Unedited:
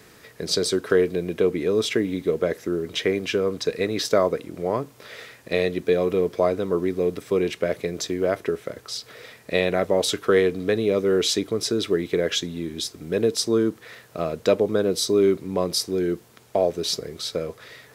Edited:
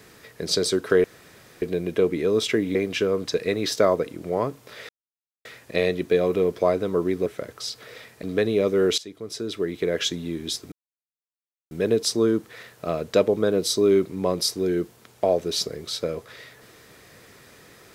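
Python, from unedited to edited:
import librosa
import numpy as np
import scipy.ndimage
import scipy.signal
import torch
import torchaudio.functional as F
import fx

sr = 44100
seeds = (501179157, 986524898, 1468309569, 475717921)

y = fx.edit(x, sr, fx.insert_room_tone(at_s=1.04, length_s=0.58),
    fx.cut(start_s=2.17, length_s=0.91),
    fx.insert_silence(at_s=5.22, length_s=0.56),
    fx.cut(start_s=7.03, length_s=1.51),
    fx.cut(start_s=9.51, length_s=1.03),
    fx.fade_in_from(start_s=11.29, length_s=1.15, floor_db=-20.0),
    fx.insert_silence(at_s=13.03, length_s=0.99), tone=tone)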